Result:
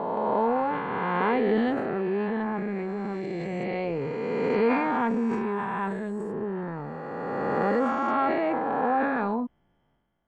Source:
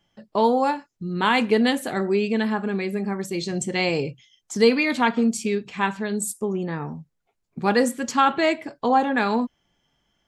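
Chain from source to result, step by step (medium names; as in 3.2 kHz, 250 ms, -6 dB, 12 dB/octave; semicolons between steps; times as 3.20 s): reverse spectral sustain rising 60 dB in 2.74 s; low-pass 1.3 kHz 12 dB/octave; transient shaper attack -2 dB, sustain +7 dB; trim -7.5 dB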